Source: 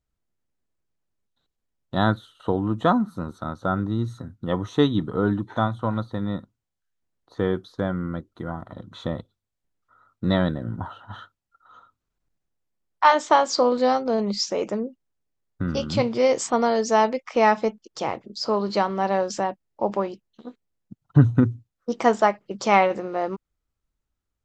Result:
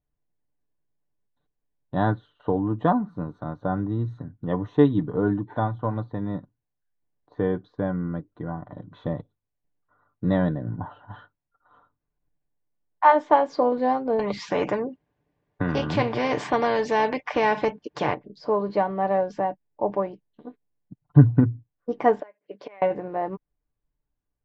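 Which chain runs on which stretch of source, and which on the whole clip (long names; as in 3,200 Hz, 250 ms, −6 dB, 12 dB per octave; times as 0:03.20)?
0:14.19–0:18.14: high-pass filter 51 Hz + every bin compressed towards the loudest bin 2 to 1
0:22.20–0:22.82: gate with flip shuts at −16 dBFS, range −24 dB + loudspeaker in its box 450–5,200 Hz, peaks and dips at 840 Hz −10 dB, 1,200 Hz −8 dB, 2,300 Hz +3 dB
whole clip: low-pass filter 1,700 Hz 12 dB per octave; notch filter 1,300 Hz, Q 5.2; comb filter 6.8 ms, depth 43%; level −1 dB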